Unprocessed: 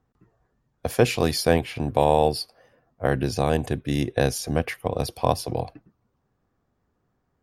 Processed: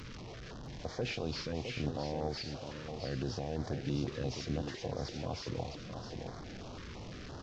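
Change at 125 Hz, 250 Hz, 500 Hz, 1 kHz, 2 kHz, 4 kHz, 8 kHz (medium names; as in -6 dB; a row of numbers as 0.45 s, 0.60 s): -11.0 dB, -11.5 dB, -16.0 dB, -18.0 dB, -13.5 dB, -10.5 dB, -16.0 dB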